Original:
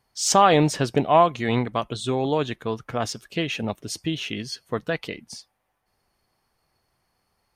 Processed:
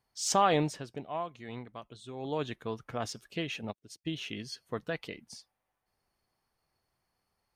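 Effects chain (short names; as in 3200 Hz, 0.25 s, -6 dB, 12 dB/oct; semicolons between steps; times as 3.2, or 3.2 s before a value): 0.56–2.41 dip -10.5 dB, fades 0.28 s; 3.59–4.07 upward expander 2.5:1, over -45 dBFS; gain -9 dB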